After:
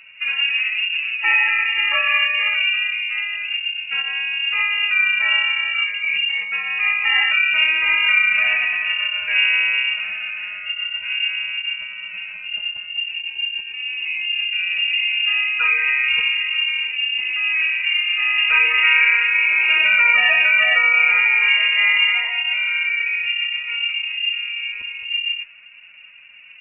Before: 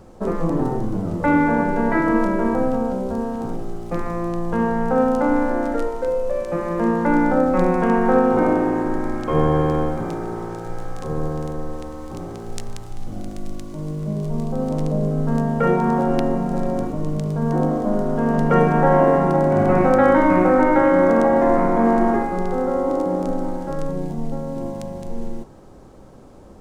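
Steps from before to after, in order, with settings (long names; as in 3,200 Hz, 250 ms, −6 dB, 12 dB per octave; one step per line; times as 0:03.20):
phase-vocoder pitch shift with formants kept +9 semitones
voice inversion scrambler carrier 2,800 Hz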